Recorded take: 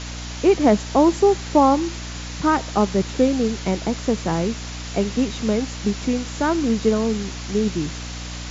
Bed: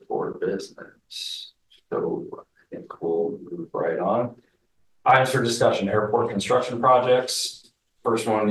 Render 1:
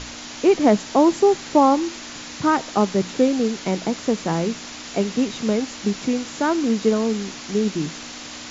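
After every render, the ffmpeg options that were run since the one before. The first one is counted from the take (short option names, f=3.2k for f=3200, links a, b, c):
-af "bandreject=f=60:t=h:w=6,bandreject=f=120:t=h:w=6,bandreject=f=180:t=h:w=6"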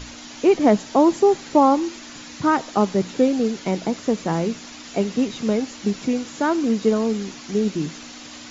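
-af "afftdn=nr=6:nf=-36"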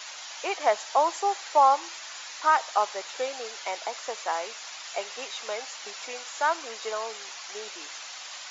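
-af "highpass=f=690:w=0.5412,highpass=f=690:w=1.3066"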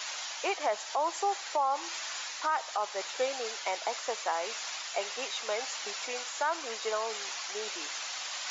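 -af "alimiter=limit=-20dB:level=0:latency=1:release=226,areverse,acompressor=mode=upward:threshold=-32dB:ratio=2.5,areverse"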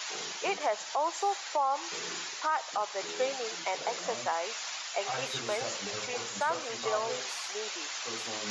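-filter_complex "[1:a]volume=-20.5dB[a];[0:a][a]amix=inputs=2:normalize=0"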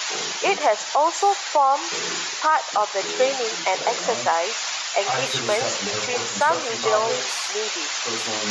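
-af "volume=11dB"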